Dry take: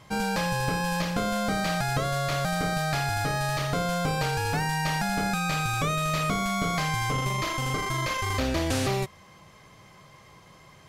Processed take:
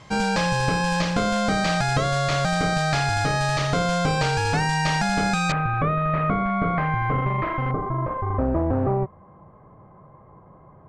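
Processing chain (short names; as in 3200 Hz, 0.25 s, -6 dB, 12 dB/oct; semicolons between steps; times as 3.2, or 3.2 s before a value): LPF 8100 Hz 24 dB/oct, from 5.52 s 1900 Hz, from 7.71 s 1100 Hz; gain +5 dB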